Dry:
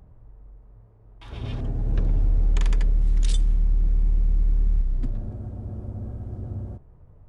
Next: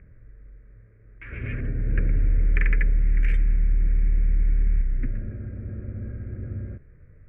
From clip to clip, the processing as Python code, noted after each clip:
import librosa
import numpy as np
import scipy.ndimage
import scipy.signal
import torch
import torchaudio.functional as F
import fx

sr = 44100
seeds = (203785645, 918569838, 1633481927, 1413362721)

y = fx.curve_eq(x, sr, hz=(550.0, 840.0, 1600.0, 2300.0, 3700.0), db=(0, -22, 13, 14, -28))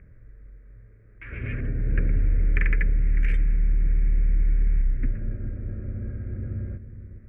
y = fx.echo_wet_lowpass(x, sr, ms=413, feedback_pct=51, hz=460.0, wet_db=-11.5)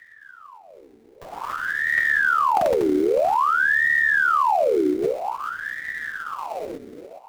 y = fx.sample_hold(x, sr, seeds[0], rate_hz=1800.0, jitter_pct=20)
y = fx.ring_lfo(y, sr, carrier_hz=1100.0, swing_pct=70, hz=0.51)
y = y * librosa.db_to_amplitude(2.5)